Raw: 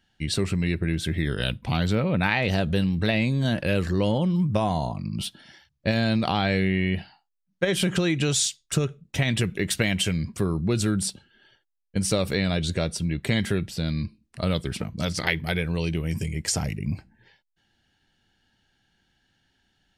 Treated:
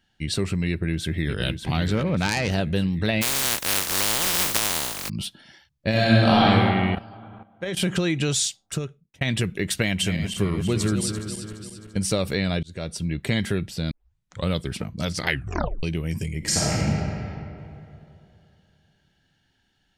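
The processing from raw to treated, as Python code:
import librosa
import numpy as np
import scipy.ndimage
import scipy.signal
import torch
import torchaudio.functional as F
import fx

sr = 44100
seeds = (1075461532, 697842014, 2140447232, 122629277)

y = fx.echo_throw(x, sr, start_s=0.69, length_s=0.74, ms=590, feedback_pct=50, wet_db=-7.0)
y = fx.self_delay(y, sr, depth_ms=0.15, at=(1.95, 2.52))
y = fx.spec_flatten(y, sr, power=0.1, at=(3.21, 5.08), fade=0.02)
y = fx.reverb_throw(y, sr, start_s=5.9, length_s=0.55, rt60_s=2.2, drr_db=-7.0)
y = fx.level_steps(y, sr, step_db=14, at=(6.95, 7.77))
y = fx.reverse_delay_fb(y, sr, ms=170, feedback_pct=68, wet_db=-8, at=(9.83, 11.97))
y = fx.reverb_throw(y, sr, start_s=16.38, length_s=0.43, rt60_s=2.8, drr_db=-6.5)
y = fx.edit(y, sr, fx.fade_out_span(start_s=8.49, length_s=0.72),
    fx.fade_in_span(start_s=12.63, length_s=0.56, curve='qsin'),
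    fx.tape_start(start_s=13.91, length_s=0.57),
    fx.tape_stop(start_s=15.28, length_s=0.55), tone=tone)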